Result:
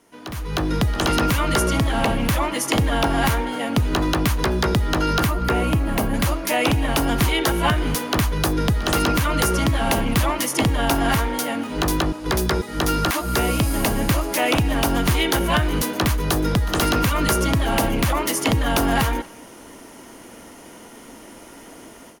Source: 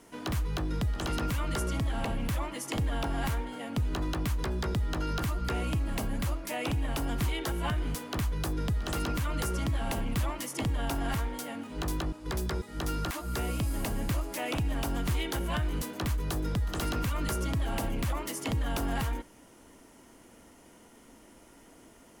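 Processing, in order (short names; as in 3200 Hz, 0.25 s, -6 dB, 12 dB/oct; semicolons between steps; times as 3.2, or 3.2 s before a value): 5.27–6.14 bell 5200 Hz -6.5 dB 2.3 oct; AGC gain up to 16 dB; low shelf 130 Hz -8 dB; notch 7700 Hz, Q 8.2; speakerphone echo 0.24 s, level -23 dB; gain -1.5 dB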